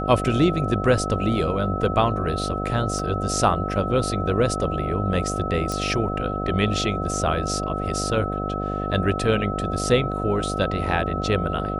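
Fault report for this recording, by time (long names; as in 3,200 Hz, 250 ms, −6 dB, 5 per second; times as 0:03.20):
mains buzz 50 Hz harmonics 15 −28 dBFS
whistle 1,300 Hz −29 dBFS
0:02.99: drop-out 2.8 ms
0:05.72: click −14 dBFS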